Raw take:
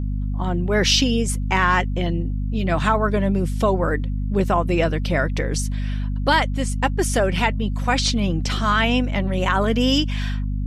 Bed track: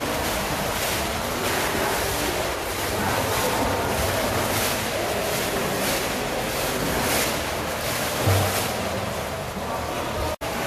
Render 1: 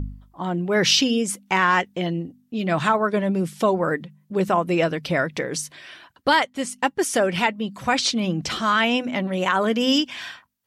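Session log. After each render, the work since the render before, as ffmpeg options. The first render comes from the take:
-af "bandreject=f=50:t=h:w=4,bandreject=f=100:t=h:w=4,bandreject=f=150:t=h:w=4,bandreject=f=200:t=h:w=4,bandreject=f=250:t=h:w=4"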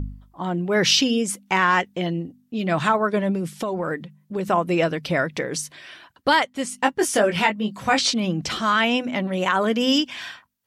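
-filter_complex "[0:a]asettb=1/sr,asplit=3[s0][s1][s2];[s0]atrim=end=3.354[s3];[s1]atrim=start=3.35:end=4.48,asetpts=PTS-STARTPTS,afade=t=in:d=0.004:c=qsin,afade=t=out:st=1.126:d=0.004:c=qsin,acompressor=threshold=0.0891:ratio=10:attack=3.2:release=140:knee=1:detection=peak[s4];[s2]atrim=start=4.476[s5];[s3][s4]acrossfade=d=0.004:c1=hsin:c2=qsin[s6];[s6][s5]acrossfade=d=0.004:c1=qsin:c2=hsin,asettb=1/sr,asplit=3[s7][s8][s9];[s7]atrim=end=6.704[s10];[s8]atrim=start=6.7:end=8.14,asetpts=PTS-STARTPTS,afade=t=in:d=0.004:c=qsin,afade=t=out:st=1.436:d=0.004:c=qsin,asplit=2[s11][s12];[s12]adelay=19,volume=0.596[s13];[s11][s13]amix=inputs=2:normalize=0,atrim=end_sample=63504[s14];[s9]atrim=start=8.136[s15];[s10][s14]acrossfade=d=0.004:c1=hsin:c2=qsin[s16];[s16][s15]acrossfade=d=0.004:c1=qsin:c2=hsin"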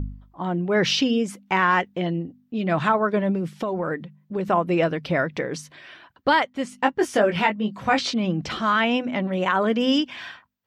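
-af "equalizer=f=10000:t=o:w=1.7:g=-14.5"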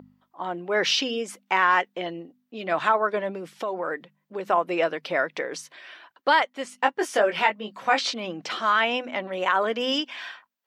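-af "highpass=460"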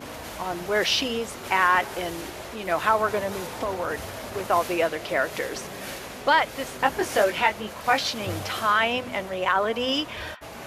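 -filter_complex "[1:a]volume=0.237[s0];[0:a][s0]amix=inputs=2:normalize=0"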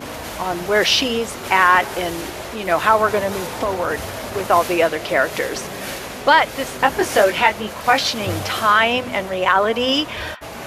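-af "volume=2.24,alimiter=limit=0.794:level=0:latency=1"

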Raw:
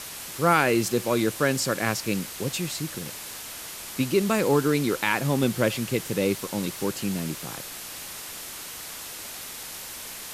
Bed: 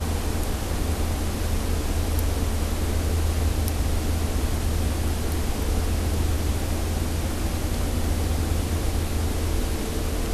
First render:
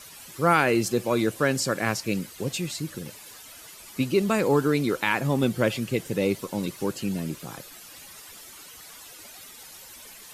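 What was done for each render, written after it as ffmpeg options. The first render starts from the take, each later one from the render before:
-af "afftdn=nr=12:nf=-39"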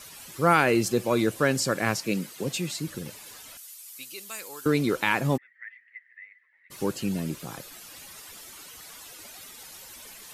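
-filter_complex "[0:a]asettb=1/sr,asplit=3[s0][s1][s2];[s0]atrim=end=1.964[s3];[s1]atrim=start=1.96:end=2.88,asetpts=PTS-STARTPTS,afade=t=in:d=0.004:c=qsin,afade=t=out:st=0.916:d=0.004:c=qsin,highpass=f=130:w=0.5412,highpass=f=130:w=1.3066[s4];[s2]atrim=start=2.876[s5];[s3][s4]acrossfade=d=0.004:c1=hsin:c2=qsin[s6];[s6][s5]acrossfade=d=0.004:c1=qsin:c2=hsin,asettb=1/sr,asplit=3[s7][s8][s9];[s7]atrim=end=3.574[s10];[s8]atrim=start=3.57:end=4.66,asetpts=PTS-STARTPTS,afade=t=in:d=0.004:c=qsin,afade=t=out:st=1.086:d=0.004:c=qsin,aderivative[s11];[s9]atrim=start=4.656[s12];[s10][s11]acrossfade=d=0.004:c1=hsin:c2=qsin[s13];[s13][s12]acrossfade=d=0.004:c1=qsin:c2=hsin,asplit=3[s14][s15][s16];[s14]afade=t=out:st=5.36:d=0.02[s17];[s15]asuperpass=centerf=1900:order=4:qfactor=8,afade=t=in:st=5.36:d=0.02,afade=t=out:st=6.7:d=0.02[s18];[s16]afade=t=in:st=6.7:d=0.02[s19];[s17][s18][s19]amix=inputs=3:normalize=0"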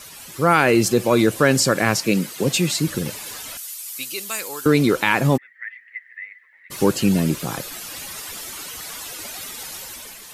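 -filter_complex "[0:a]asplit=2[s0][s1];[s1]alimiter=limit=0.141:level=0:latency=1,volume=0.794[s2];[s0][s2]amix=inputs=2:normalize=0,dynaudnorm=f=150:g=7:m=2.11"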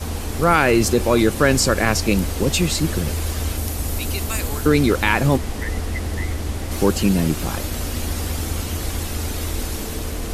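-filter_complex "[1:a]volume=0.891[s0];[0:a][s0]amix=inputs=2:normalize=0"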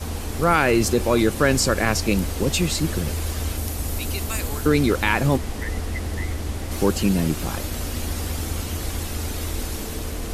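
-af "volume=0.75"

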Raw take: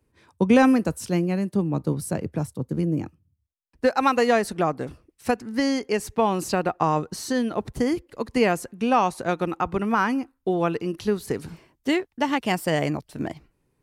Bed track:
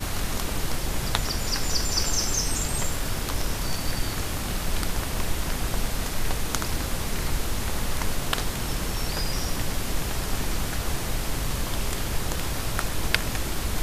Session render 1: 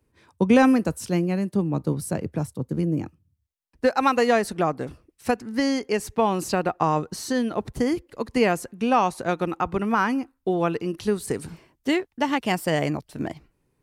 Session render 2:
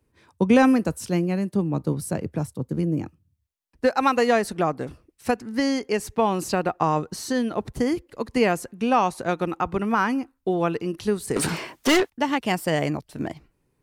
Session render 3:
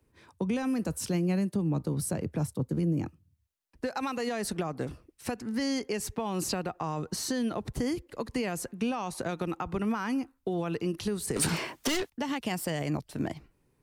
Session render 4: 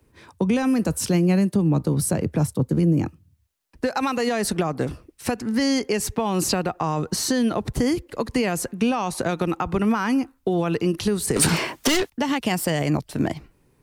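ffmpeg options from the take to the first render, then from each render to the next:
-filter_complex "[0:a]asettb=1/sr,asplit=3[s0][s1][s2];[s0]atrim=end=11.034[s3];[s1]atrim=start=11.03:end=11.47,asetpts=PTS-STARTPTS,afade=t=in:d=0.004:c=qsin,afade=t=out:st=0.436:d=0.004:c=qsin,equalizer=f=8700:t=o:w=0.34:g=11.5[s4];[s2]atrim=start=11.466[s5];[s3][s4]acrossfade=d=0.004:c1=hsin:c2=qsin[s6];[s6][s5]acrossfade=d=0.004:c1=qsin:c2=hsin"
-filter_complex "[0:a]asettb=1/sr,asplit=3[s0][s1][s2];[s0]atrim=end=11.364[s3];[s1]atrim=start=11.36:end=12.1,asetpts=PTS-STARTPTS,afade=t=in:d=0.004:c=qsin,afade=t=out:st=0.736:d=0.004:c=qsin,asplit=2[s4][s5];[s5]highpass=f=720:p=1,volume=31.6,asoftclip=type=tanh:threshold=0.266[s6];[s4][s6]amix=inputs=2:normalize=0,lowpass=f=6700:p=1,volume=0.501[s7];[s2]atrim=start=12.096[s8];[s3][s7]acrossfade=d=0.004:c1=hsin:c2=qsin[s9];[s9][s8]acrossfade=d=0.004:c1=qsin:c2=hsin"
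-filter_complex "[0:a]alimiter=limit=0.119:level=0:latency=1:release=68,acrossover=split=190|3000[s0][s1][s2];[s1]acompressor=threshold=0.0316:ratio=6[s3];[s0][s3][s2]amix=inputs=3:normalize=0"
-af "volume=2.82"

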